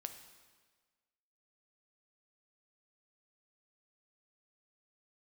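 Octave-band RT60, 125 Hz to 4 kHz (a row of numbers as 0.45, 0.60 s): 1.4, 1.5, 1.5, 1.5, 1.4, 1.3 s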